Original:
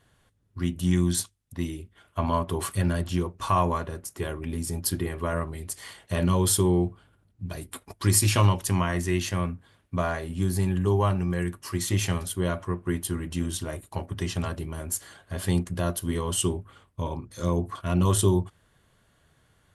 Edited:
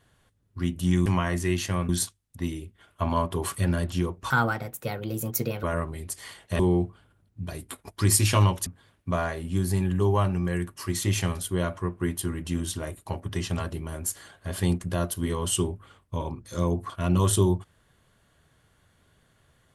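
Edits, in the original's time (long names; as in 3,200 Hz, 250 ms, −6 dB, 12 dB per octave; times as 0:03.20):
0:03.47–0:05.23: play speed 132%
0:06.19–0:06.62: remove
0:08.69–0:09.52: move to 0:01.06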